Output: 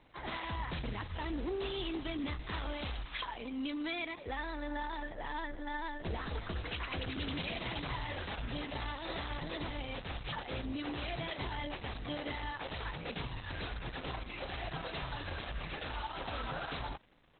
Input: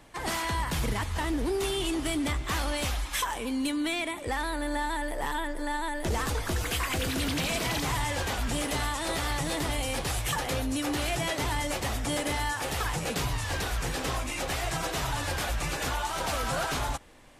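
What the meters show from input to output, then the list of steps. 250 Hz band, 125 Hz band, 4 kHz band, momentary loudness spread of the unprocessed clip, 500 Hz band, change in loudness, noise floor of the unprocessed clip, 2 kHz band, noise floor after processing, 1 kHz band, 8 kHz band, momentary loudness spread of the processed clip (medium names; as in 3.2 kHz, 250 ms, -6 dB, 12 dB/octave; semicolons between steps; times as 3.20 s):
-8.5 dB, -9.0 dB, -9.0 dB, 3 LU, -9.0 dB, -9.5 dB, -36 dBFS, -9.0 dB, -48 dBFS, -9.5 dB, under -40 dB, 4 LU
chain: resampled via 32 kHz; treble shelf 4.1 kHz +5.5 dB; trim -7.5 dB; Opus 8 kbps 48 kHz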